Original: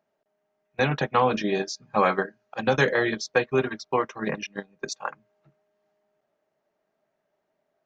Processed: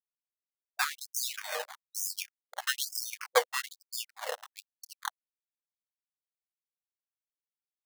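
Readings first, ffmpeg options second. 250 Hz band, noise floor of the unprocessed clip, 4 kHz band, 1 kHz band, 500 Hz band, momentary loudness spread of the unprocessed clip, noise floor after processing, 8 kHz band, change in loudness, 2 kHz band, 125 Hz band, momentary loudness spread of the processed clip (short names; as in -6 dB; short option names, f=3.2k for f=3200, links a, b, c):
under -40 dB, -78 dBFS, -0.5 dB, -11.5 dB, -13.0 dB, 12 LU, under -85 dBFS, n/a, -8.5 dB, -8.5 dB, under -40 dB, 13 LU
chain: -af "acrusher=samples=15:mix=1:aa=0.000001:lfo=1:lforange=9:lforate=1.2,aeval=exprs='sgn(val(0))*max(abs(val(0))-0.0188,0)':c=same,afftfilt=real='re*gte(b*sr/1024,460*pow(5000/460,0.5+0.5*sin(2*PI*1.1*pts/sr)))':imag='im*gte(b*sr/1024,460*pow(5000/460,0.5+0.5*sin(2*PI*1.1*pts/sr)))':win_size=1024:overlap=0.75,volume=-1dB"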